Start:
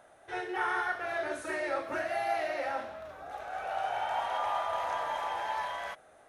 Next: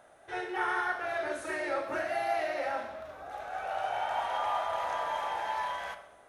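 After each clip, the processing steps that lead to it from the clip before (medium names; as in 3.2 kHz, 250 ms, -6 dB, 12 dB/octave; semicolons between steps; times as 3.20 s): reverberation RT60 0.95 s, pre-delay 26 ms, DRR 10 dB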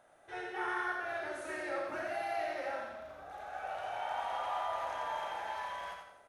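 feedback delay 86 ms, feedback 40%, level -4.5 dB; trim -6.5 dB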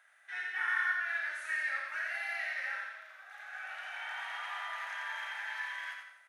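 resonant high-pass 1.8 kHz, resonance Q 3.3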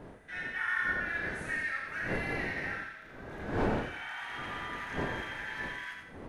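wind noise 510 Hz -40 dBFS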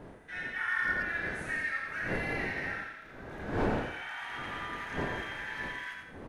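speakerphone echo 110 ms, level -10 dB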